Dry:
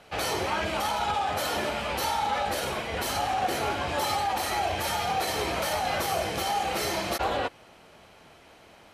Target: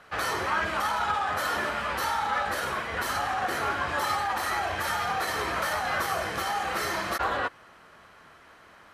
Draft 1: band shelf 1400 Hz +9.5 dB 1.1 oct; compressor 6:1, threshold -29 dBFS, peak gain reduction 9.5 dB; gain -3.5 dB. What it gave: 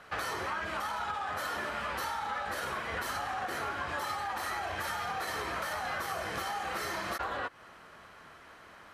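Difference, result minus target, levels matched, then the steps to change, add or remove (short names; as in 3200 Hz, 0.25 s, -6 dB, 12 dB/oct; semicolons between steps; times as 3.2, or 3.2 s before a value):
compressor: peak gain reduction +9.5 dB
remove: compressor 6:1, threshold -29 dBFS, peak gain reduction 9.5 dB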